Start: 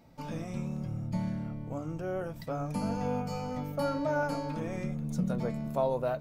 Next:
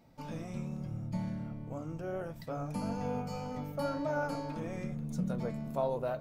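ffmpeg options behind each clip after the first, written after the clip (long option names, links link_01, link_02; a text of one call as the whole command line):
ffmpeg -i in.wav -af "flanger=delay=4.8:depth=8.7:regen=-83:speed=1.7:shape=triangular,volume=1dB" out.wav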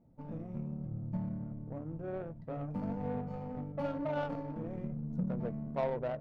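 ffmpeg -i in.wav -af "adynamicsmooth=sensitivity=1.5:basefreq=540,aemphasis=mode=production:type=50fm" out.wav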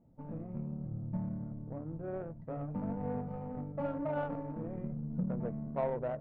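ffmpeg -i in.wav -af "lowpass=1900" out.wav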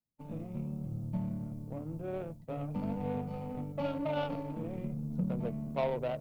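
ffmpeg -i in.wav -filter_complex "[0:a]agate=range=-33dB:threshold=-42dB:ratio=3:detection=peak,acrossover=split=180|680[link_01][link_02][link_03];[link_03]aexciter=amount=8.1:drive=4.8:freq=2500[link_04];[link_01][link_02][link_04]amix=inputs=3:normalize=0,volume=1.5dB" out.wav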